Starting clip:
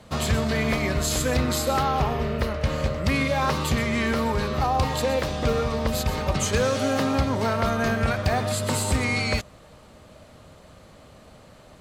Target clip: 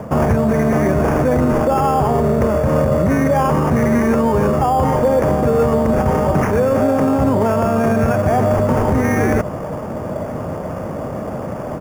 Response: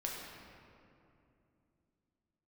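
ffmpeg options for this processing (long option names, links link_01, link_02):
-af "highpass=110,acrusher=samples=11:mix=1:aa=0.000001,firequalizer=gain_entry='entry(680,0);entry(3400,-23);entry(6100,-15)':delay=0.05:min_phase=1,areverse,acompressor=threshold=-35dB:ratio=6,areverse,alimiter=level_in=32dB:limit=-1dB:release=50:level=0:latency=1,volume=-6dB"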